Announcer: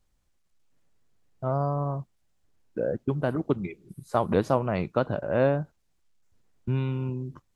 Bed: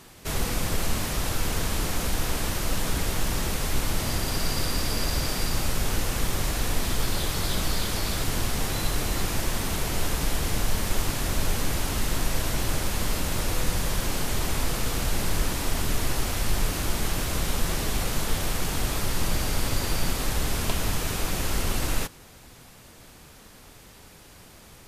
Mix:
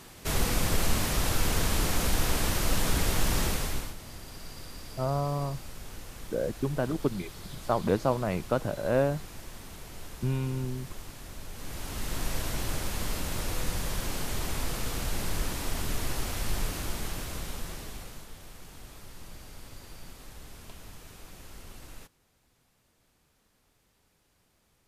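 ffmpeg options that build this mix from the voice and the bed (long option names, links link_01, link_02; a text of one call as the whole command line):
ffmpeg -i stem1.wav -i stem2.wav -filter_complex "[0:a]adelay=3550,volume=-2.5dB[link_01];[1:a]volume=11.5dB,afade=type=out:start_time=3.43:duration=0.52:silence=0.141254,afade=type=in:start_time=11.52:duration=0.76:silence=0.266073,afade=type=out:start_time=16.58:duration=1.72:silence=0.177828[link_02];[link_01][link_02]amix=inputs=2:normalize=0" out.wav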